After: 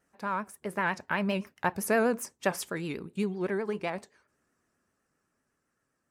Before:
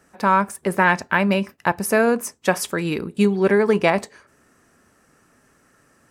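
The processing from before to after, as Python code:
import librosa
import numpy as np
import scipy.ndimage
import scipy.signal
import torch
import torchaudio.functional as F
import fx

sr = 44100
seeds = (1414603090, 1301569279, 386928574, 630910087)

y = fx.doppler_pass(x, sr, speed_mps=6, closest_m=5.0, pass_at_s=1.99)
y = fx.vibrato(y, sr, rate_hz=7.8, depth_cents=91.0)
y = y * 10.0 ** (-8.0 / 20.0)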